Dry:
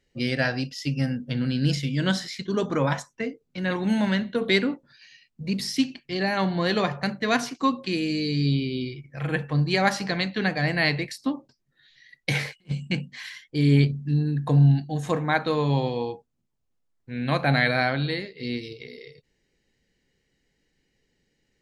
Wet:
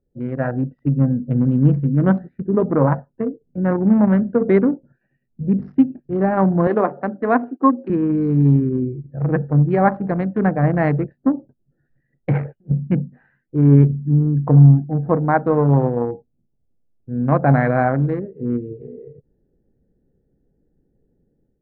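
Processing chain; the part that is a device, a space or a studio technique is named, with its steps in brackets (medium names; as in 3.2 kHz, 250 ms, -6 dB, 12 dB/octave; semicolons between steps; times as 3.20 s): local Wiener filter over 41 samples; 6.67–7.90 s: Chebyshev band-pass 250–9600 Hz, order 3; action camera in a waterproof case (low-pass 1.3 kHz 24 dB/octave; level rider gain up to 9 dB; trim +1 dB; AAC 96 kbps 44.1 kHz)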